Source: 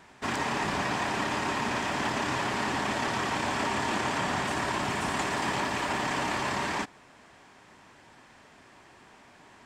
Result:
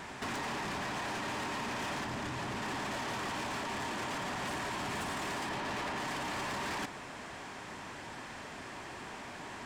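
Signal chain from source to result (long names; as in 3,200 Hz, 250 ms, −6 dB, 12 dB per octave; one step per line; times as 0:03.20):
0:02.05–0:02.62: low-shelf EQ 200 Hz +9.5 dB
0:05.49–0:05.98: low-pass filter 3,900 Hz 6 dB per octave
compressor whose output falls as the input rises −36 dBFS, ratio −1
soft clipping −38 dBFS, distortion −9 dB
level +4 dB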